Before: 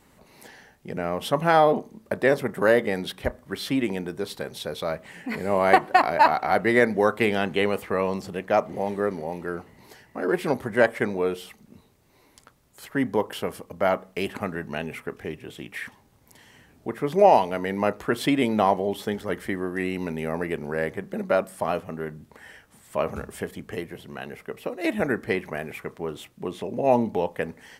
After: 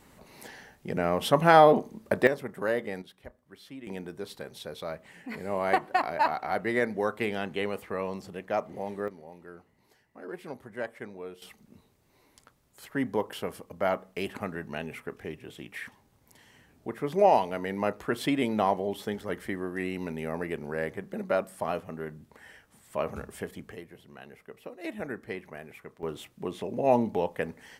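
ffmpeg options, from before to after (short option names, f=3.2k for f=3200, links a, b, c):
-af "asetnsamples=n=441:p=0,asendcmd='2.27 volume volume -9.5dB;3.02 volume volume -19.5dB;3.87 volume volume -8dB;9.08 volume volume -16dB;11.42 volume volume -5dB;23.72 volume volume -11.5dB;26.03 volume volume -3dB',volume=1dB"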